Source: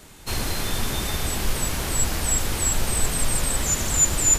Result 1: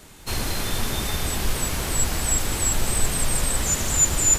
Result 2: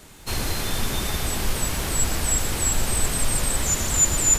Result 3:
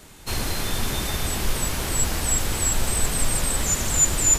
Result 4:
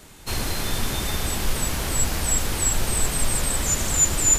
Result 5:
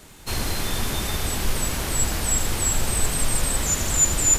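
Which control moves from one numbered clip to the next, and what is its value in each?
feedback echo at a low word length, delay time: 198, 120, 550, 342, 81 milliseconds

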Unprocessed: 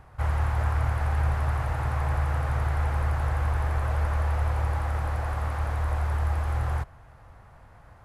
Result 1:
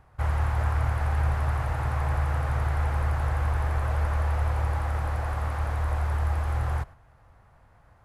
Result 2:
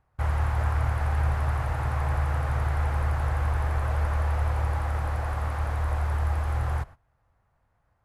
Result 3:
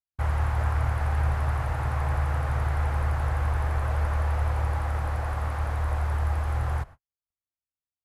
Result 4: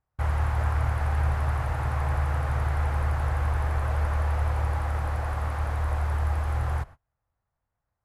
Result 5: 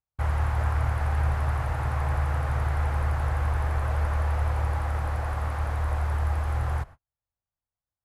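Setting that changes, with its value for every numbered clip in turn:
noise gate, range: −6, −19, −59, −32, −46 decibels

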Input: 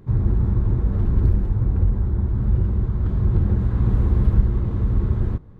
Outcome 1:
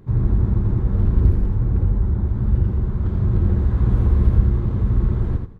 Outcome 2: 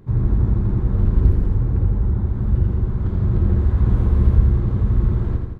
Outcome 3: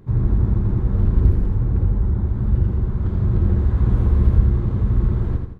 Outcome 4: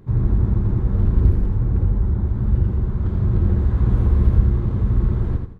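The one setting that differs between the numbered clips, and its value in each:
repeating echo, feedback: 16, 61, 41, 27%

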